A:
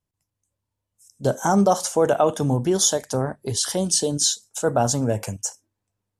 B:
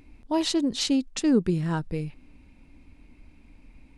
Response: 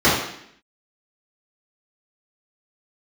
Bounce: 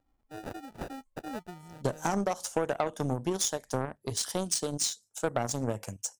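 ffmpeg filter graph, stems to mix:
-filter_complex "[0:a]acompressor=threshold=0.1:ratio=6,adelay=600,volume=0.596[s0];[1:a]highshelf=f=4200:t=q:w=3:g=7.5,acrusher=samples=41:mix=1:aa=0.000001,equalizer=f=790:t=o:w=1.7:g=6.5,volume=0.168[s1];[s0][s1]amix=inputs=2:normalize=0,aeval=exprs='0.237*(cos(1*acos(clip(val(0)/0.237,-1,1)))-cos(1*PI/2))+0.0168*(cos(5*acos(clip(val(0)/0.237,-1,1)))-cos(5*PI/2))+0.0335*(cos(7*acos(clip(val(0)/0.237,-1,1)))-cos(7*PI/2))':c=same"

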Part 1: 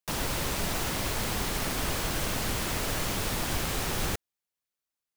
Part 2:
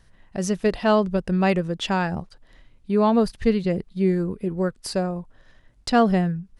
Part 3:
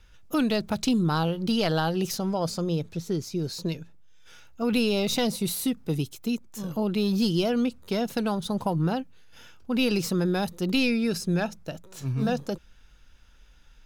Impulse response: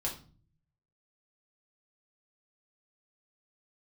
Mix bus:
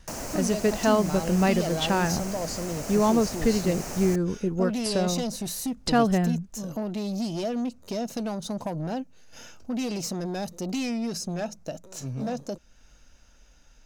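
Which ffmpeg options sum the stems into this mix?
-filter_complex "[0:a]equalizer=f=3500:t=o:w=0.46:g=-11,volume=0.944[s0];[1:a]acompressor=threshold=0.0501:ratio=1.5,volume=1.12[s1];[2:a]bandreject=f=3400:w=12,dynaudnorm=f=130:g=21:m=1.78,asoftclip=type=tanh:threshold=0.106,volume=0.841[s2];[s0][s2]amix=inputs=2:normalize=0,equalizer=f=250:t=o:w=0.67:g=6,equalizer=f=630:t=o:w=0.67:g=9,equalizer=f=6300:t=o:w=0.67:g=10,acompressor=threshold=0.00631:ratio=1.5,volume=1[s3];[s1][s3]amix=inputs=2:normalize=0"

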